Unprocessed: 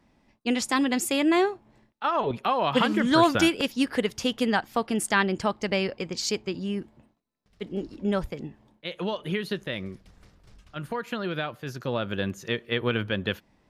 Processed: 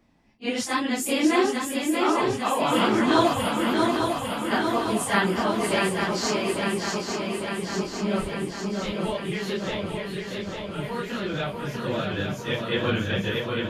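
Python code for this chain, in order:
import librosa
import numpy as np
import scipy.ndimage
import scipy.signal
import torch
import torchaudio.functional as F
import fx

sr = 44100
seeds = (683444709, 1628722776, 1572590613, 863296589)

y = fx.phase_scramble(x, sr, seeds[0], window_ms=100)
y = fx.cheby1_bandstop(y, sr, low_hz=130.0, high_hz=8700.0, order=4, at=(3.33, 4.51))
y = fx.echo_swing(y, sr, ms=851, ratio=3, feedback_pct=66, wet_db=-4.5)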